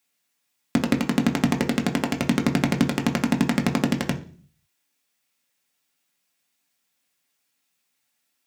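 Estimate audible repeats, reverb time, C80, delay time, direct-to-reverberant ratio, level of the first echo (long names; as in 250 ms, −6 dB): no echo audible, 0.45 s, 19.0 dB, no echo audible, 2.5 dB, no echo audible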